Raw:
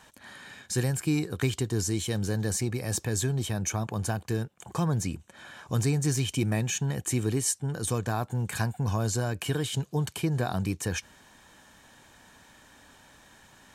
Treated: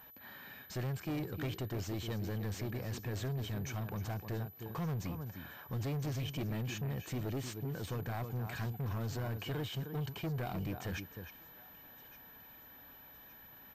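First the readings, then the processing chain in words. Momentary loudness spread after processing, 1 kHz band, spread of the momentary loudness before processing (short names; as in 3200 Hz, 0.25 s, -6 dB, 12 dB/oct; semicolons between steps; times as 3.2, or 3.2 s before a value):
15 LU, -9.0 dB, 6 LU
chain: high shelf 4300 Hz -6 dB; outdoor echo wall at 53 m, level -11 dB; soft clip -29 dBFS, distortion -9 dB; on a send: thinning echo 1.165 s, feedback 56%, high-pass 1000 Hz, level -19 dB; on the sum: pulse-width modulation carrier 12000 Hz; gain -4.5 dB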